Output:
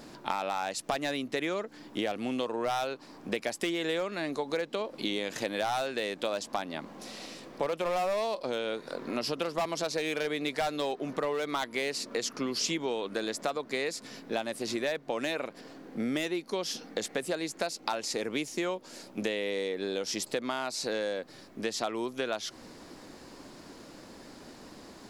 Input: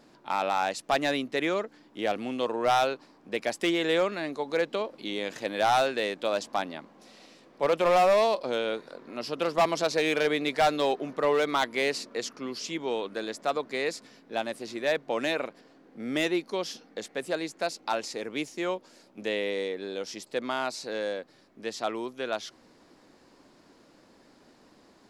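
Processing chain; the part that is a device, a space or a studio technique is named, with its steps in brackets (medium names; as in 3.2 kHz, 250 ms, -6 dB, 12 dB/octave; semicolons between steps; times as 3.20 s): ASMR close-microphone chain (bass shelf 140 Hz +5 dB; compression 8:1, threshold -37 dBFS, peak gain reduction 17 dB; treble shelf 6 kHz +6.5 dB); trim +8 dB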